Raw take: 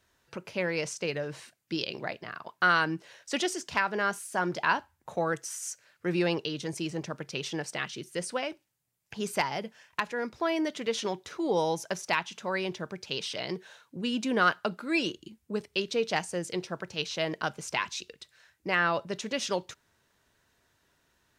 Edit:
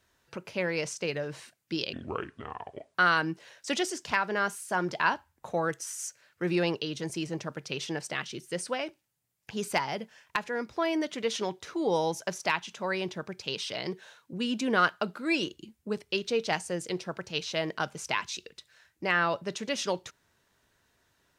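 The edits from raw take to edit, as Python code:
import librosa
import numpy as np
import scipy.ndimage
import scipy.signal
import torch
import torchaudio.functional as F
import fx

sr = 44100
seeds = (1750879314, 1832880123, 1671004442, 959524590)

y = fx.edit(x, sr, fx.speed_span(start_s=1.93, length_s=0.65, speed=0.64), tone=tone)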